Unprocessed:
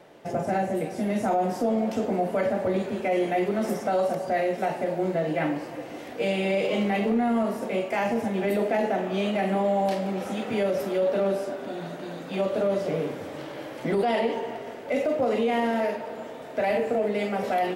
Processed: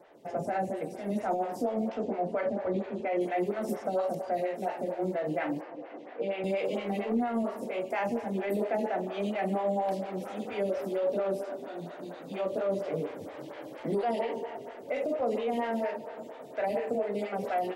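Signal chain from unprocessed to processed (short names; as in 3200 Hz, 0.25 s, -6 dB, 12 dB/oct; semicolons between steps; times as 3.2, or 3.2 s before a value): 1.89–3.21 air absorption 96 m; 5.61–6.44 BPF 230–2600 Hz; photocell phaser 4.3 Hz; gain -3.5 dB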